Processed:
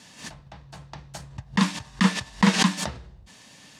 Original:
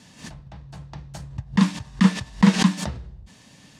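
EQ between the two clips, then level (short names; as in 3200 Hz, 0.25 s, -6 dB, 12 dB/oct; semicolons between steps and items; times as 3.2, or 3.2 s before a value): low shelf 330 Hz -10 dB; +3.0 dB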